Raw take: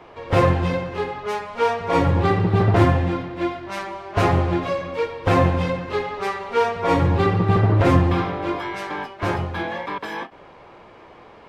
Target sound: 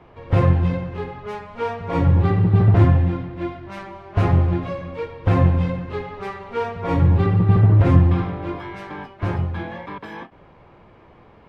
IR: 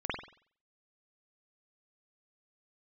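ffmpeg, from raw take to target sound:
-af "bass=f=250:g=11,treble=f=4000:g=-7,volume=0.501"

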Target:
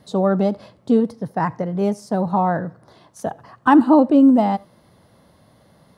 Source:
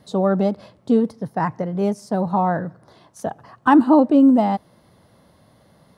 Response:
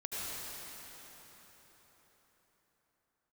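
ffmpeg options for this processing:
-filter_complex "[0:a]asplit=2[s0][s1];[1:a]atrim=start_sample=2205,afade=t=out:st=0.16:d=0.01,atrim=end_sample=7497,asetrate=52920,aresample=44100[s2];[s1][s2]afir=irnorm=-1:irlink=0,volume=0.178[s3];[s0][s3]amix=inputs=2:normalize=0"

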